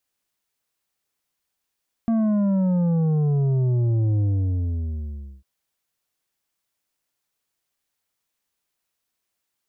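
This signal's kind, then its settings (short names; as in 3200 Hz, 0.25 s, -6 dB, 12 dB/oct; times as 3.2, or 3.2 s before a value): sub drop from 230 Hz, over 3.35 s, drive 7.5 dB, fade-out 1.23 s, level -18.5 dB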